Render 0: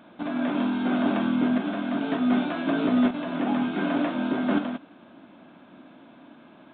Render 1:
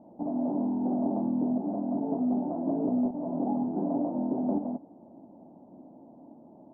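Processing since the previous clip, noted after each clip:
Chebyshev low-pass filter 870 Hz, order 5
downward compressor 2.5 to 1, threshold −26 dBFS, peak gain reduction 5.5 dB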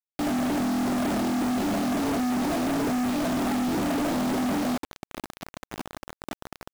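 in parallel at −2 dB: brickwall limiter −29 dBFS, peak gain reduction 10.5 dB
on the sum: log-companded quantiser 2 bits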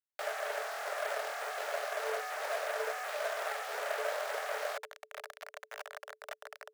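Chebyshev high-pass with heavy ripple 420 Hz, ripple 9 dB

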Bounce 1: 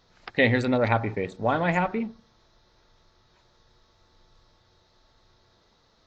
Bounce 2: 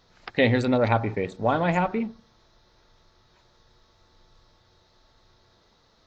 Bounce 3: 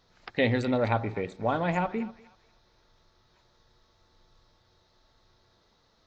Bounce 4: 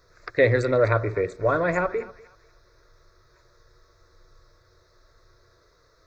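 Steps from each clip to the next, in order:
dynamic equaliser 1,900 Hz, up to −5 dB, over −37 dBFS, Q 2.1; level +1.5 dB
feedback echo with a high-pass in the loop 243 ms, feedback 31%, high-pass 730 Hz, level −18 dB; level −4.5 dB
phaser with its sweep stopped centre 820 Hz, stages 6; level +9 dB

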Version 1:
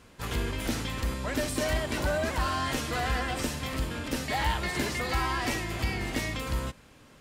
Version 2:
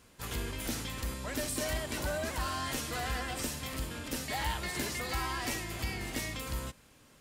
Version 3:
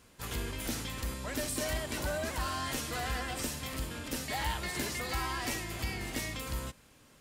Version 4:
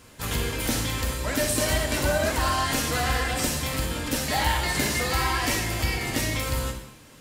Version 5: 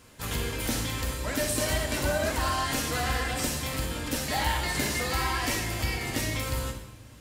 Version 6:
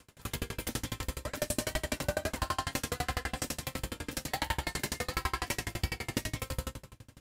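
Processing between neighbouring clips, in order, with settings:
high-shelf EQ 5,800 Hz +10 dB; level −6.5 dB
no processing that can be heard
reverb whose tail is shaped and stops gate 290 ms falling, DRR 3 dB; level +8.5 dB
delay with a low-pass on its return 119 ms, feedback 82%, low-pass 400 Hz, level −19 dB; level −3.5 dB
tremolo with a ramp in dB decaying 12 Hz, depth 34 dB; level +2 dB

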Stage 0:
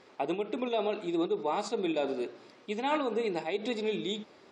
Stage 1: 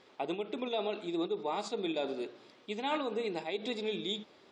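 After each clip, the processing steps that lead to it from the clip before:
parametric band 3,400 Hz +6 dB 0.5 octaves
level −4 dB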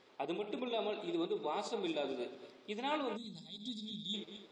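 feedback delay that plays each chunk backwards 112 ms, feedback 53%, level −10 dB
gain on a spectral selection 0:03.16–0:04.14, 260–3,200 Hz −24 dB
level −3.5 dB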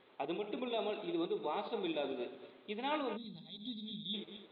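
Butterworth low-pass 3,900 Hz 72 dB per octave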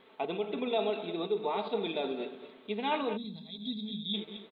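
comb filter 4.5 ms, depth 47%
level +4.5 dB

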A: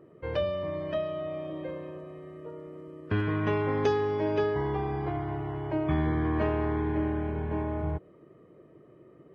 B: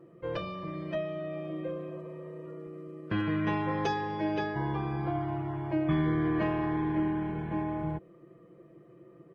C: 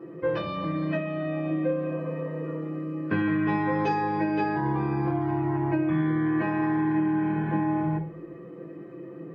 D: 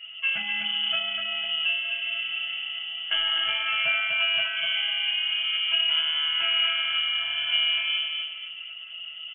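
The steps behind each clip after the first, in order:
healed spectral selection 0:01.92–0:02.55, 400–1,200 Hz both; comb filter 5.9 ms, depth 88%; level −3 dB
downward compressor, threshold −37 dBFS, peak gain reduction 13 dB; convolution reverb RT60 0.45 s, pre-delay 3 ms, DRR −4 dB
repeating echo 249 ms, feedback 36%, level −5 dB; voice inversion scrambler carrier 3,200 Hz

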